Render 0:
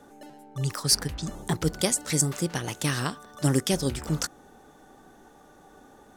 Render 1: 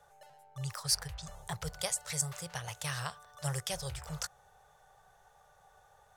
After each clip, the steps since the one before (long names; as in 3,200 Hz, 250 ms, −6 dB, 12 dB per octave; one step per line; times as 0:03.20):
Chebyshev band-stop filter 120–620 Hz, order 2
level −7 dB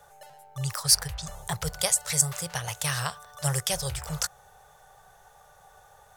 high-shelf EQ 9,100 Hz +7.5 dB
level +7.5 dB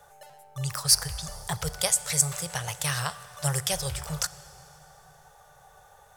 dense smooth reverb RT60 3.7 s, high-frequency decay 0.75×, DRR 15 dB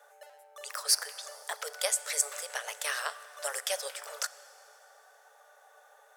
Chebyshev high-pass with heavy ripple 420 Hz, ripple 6 dB